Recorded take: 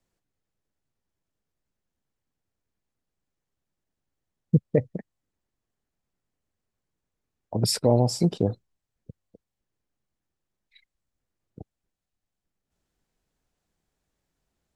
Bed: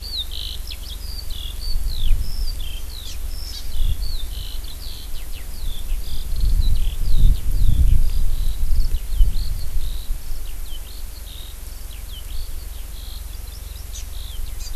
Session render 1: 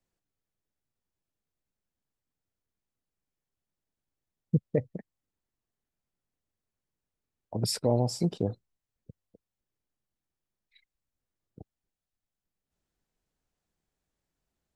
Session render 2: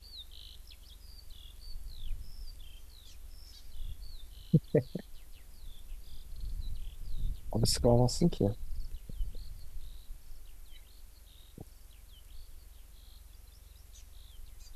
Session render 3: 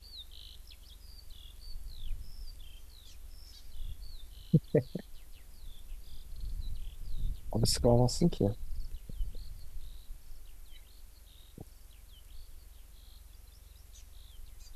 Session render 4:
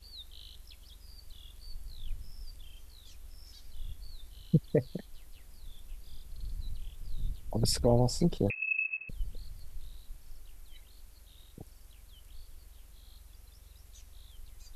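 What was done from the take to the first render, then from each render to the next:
gain -5.5 dB
add bed -21.5 dB
nothing audible
8.5–9.09 inverted band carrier 2600 Hz

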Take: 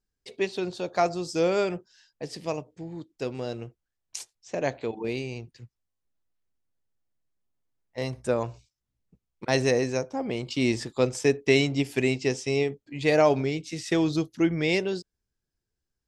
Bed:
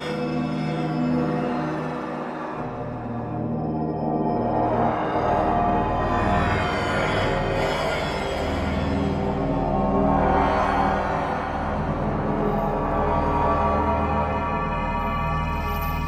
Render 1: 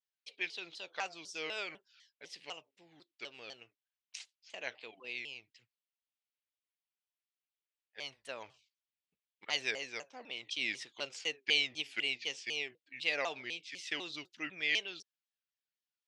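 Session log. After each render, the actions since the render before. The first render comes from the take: band-pass 2900 Hz, Q 2; shaped vibrato saw down 4 Hz, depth 250 cents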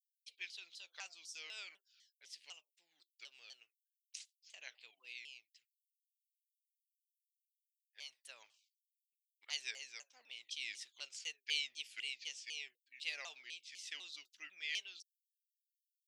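differentiator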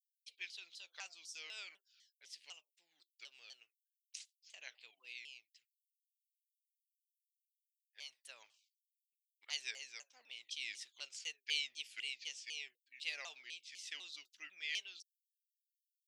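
nothing audible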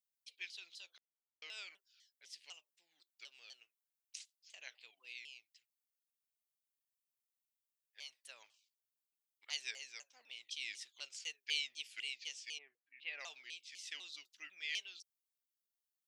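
0.98–1.42 mute; 12.57–13.19 LPF 1500 Hz -> 3100 Hz 24 dB/oct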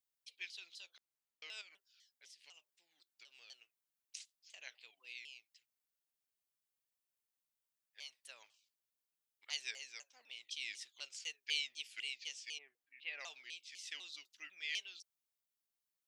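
1.61–3.5 compressor 12:1, threshold -55 dBFS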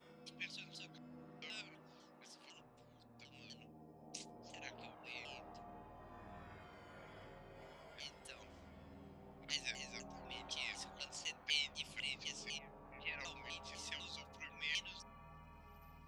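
add bed -34.5 dB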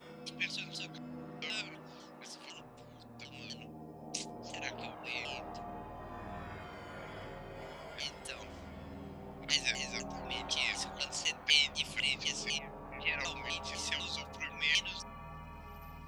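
gain +10.5 dB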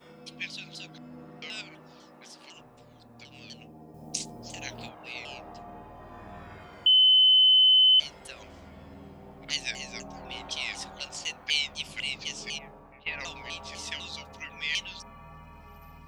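3.94–4.89 tone controls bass +7 dB, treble +9 dB; 6.86–8 bleep 3040 Hz -15.5 dBFS; 12.65–13.06 fade out, to -14 dB

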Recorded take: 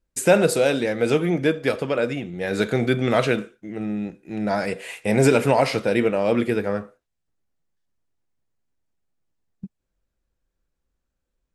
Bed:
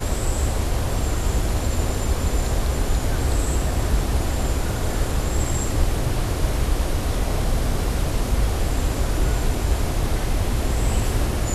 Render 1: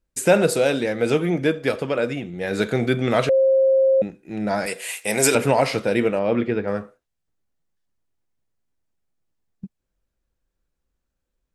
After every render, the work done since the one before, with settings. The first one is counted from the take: 3.29–4.02 bleep 533 Hz -13 dBFS; 4.66–5.35 RIAA curve recording; 6.19–6.68 air absorption 210 m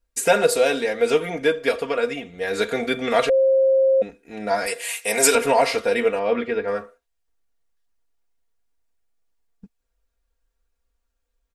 bell 190 Hz -14 dB 1.1 oct; comb 4.3 ms, depth 85%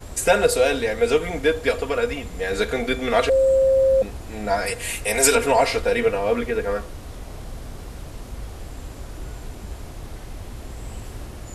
add bed -13.5 dB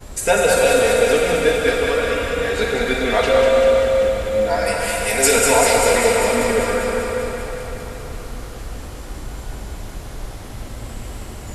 thinning echo 0.196 s, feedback 71%, high-pass 540 Hz, level -5 dB; plate-style reverb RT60 4.2 s, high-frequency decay 0.8×, DRR -1 dB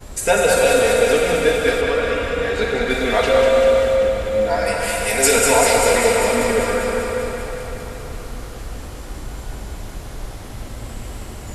1.81–2.9 high shelf 7400 Hz -10.5 dB; 3.95–4.83 high shelf 6100 Hz -4 dB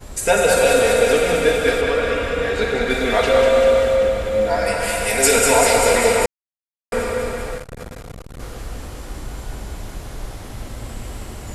6.26–6.92 mute; 7.57–8.4 core saturation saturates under 300 Hz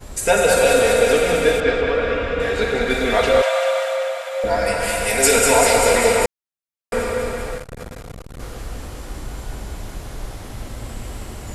1.6–2.4 air absorption 140 m; 3.42–4.44 steep high-pass 560 Hz 72 dB/oct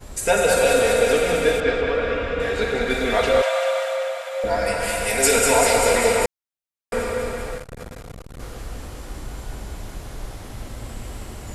gain -2.5 dB

